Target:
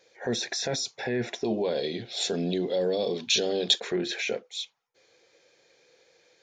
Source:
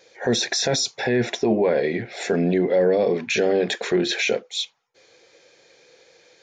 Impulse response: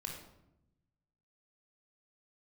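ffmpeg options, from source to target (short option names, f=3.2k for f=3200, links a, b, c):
-filter_complex "[0:a]asettb=1/sr,asplit=3[a][b][c];[a]atrim=end=1.444[d];[b]atrim=start=1.44:end=3.8,asetpts=PTS-STARTPTS,afade=t=in:d=0.004:c=qsin,afade=t=out:st=2.356:d=0.004:c=qsin,highshelf=f=2.7k:t=q:w=3:g=9.5[e];[c]atrim=start=3.796[f];[d][e]acrossfade=d=0.004:c1=hsin:c2=qsin[g];[g][f]acrossfade=d=0.004:c1=qsin:c2=hsin,volume=-8dB"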